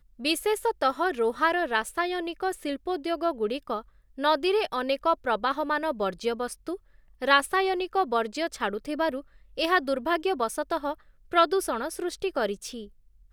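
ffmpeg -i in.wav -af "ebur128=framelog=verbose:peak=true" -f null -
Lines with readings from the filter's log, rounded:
Integrated loudness:
  I:         -27.2 LUFS
  Threshold: -37.6 LUFS
Loudness range:
  LRA:         1.9 LU
  Threshold: -47.5 LUFS
  LRA low:   -28.6 LUFS
  LRA high:  -26.7 LUFS
True peak:
  Peak:       -5.9 dBFS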